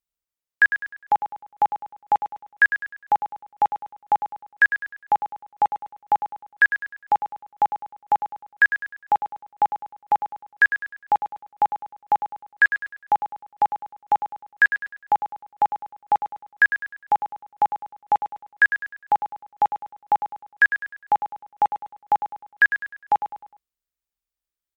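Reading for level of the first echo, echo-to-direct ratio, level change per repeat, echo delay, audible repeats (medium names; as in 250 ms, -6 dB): -10.0 dB, -9.5 dB, -8.0 dB, 102 ms, 4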